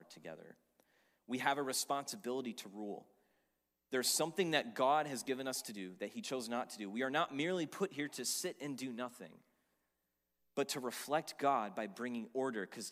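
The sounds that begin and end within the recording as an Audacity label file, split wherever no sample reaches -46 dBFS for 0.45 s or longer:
1.300000	2.990000	sound
3.920000	9.270000	sound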